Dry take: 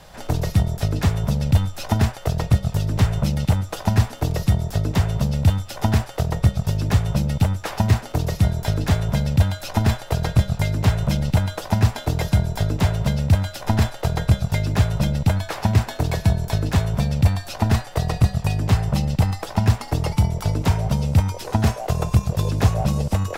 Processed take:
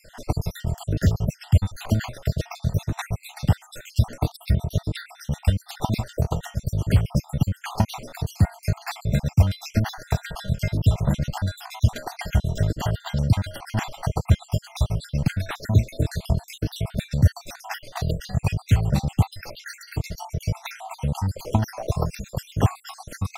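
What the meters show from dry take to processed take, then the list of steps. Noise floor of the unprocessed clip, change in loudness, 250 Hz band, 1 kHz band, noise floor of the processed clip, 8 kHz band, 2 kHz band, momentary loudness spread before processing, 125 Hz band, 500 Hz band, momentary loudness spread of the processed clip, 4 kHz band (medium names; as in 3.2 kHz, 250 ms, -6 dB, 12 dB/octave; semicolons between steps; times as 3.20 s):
-37 dBFS, -4.0 dB, -4.5 dB, -5.0 dB, -53 dBFS, -4.5 dB, -4.0 dB, 3 LU, -4.0 dB, -5.0 dB, 10 LU, -4.5 dB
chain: random holes in the spectrogram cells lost 61%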